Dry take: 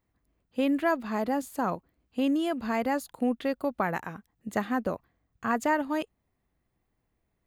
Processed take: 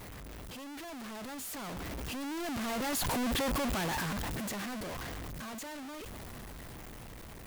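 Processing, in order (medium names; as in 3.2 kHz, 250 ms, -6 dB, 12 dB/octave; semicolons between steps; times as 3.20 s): one-bit comparator; Doppler pass-by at 3.38 s, 6 m/s, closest 3.6 m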